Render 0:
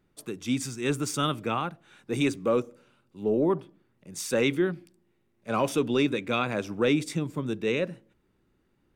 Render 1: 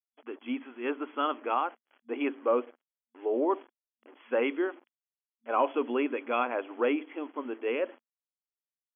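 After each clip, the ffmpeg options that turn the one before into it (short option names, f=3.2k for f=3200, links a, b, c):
-af "equalizer=f=860:t=o:w=1.5:g=11,acrusher=bits=6:mix=0:aa=0.5,afftfilt=real='re*between(b*sr/4096,230,3400)':imag='im*between(b*sr/4096,230,3400)':win_size=4096:overlap=0.75,volume=-7dB"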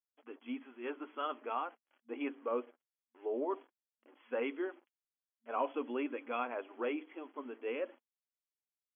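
-af "flanger=delay=3.3:depth=2.4:regen=-48:speed=0.5:shape=triangular,volume=-4.5dB"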